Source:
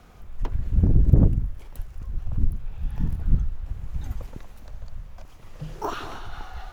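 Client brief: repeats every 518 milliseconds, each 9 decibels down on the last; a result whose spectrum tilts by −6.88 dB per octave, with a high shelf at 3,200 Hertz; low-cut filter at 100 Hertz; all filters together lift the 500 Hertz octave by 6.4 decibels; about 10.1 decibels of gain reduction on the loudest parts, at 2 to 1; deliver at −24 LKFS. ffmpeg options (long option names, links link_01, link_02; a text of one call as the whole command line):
ffmpeg -i in.wav -af "highpass=100,equalizer=frequency=500:width_type=o:gain=8.5,highshelf=frequency=3200:gain=-4,acompressor=threshold=-33dB:ratio=2,aecho=1:1:518|1036|1554|2072:0.355|0.124|0.0435|0.0152,volume=13dB" out.wav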